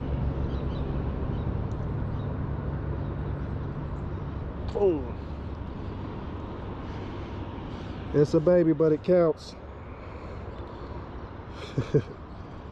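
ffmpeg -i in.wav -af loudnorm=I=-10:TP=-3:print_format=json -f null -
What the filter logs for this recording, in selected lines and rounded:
"input_i" : "-30.0",
"input_tp" : "-11.1",
"input_lra" : "8.9",
"input_thresh" : "-40.7",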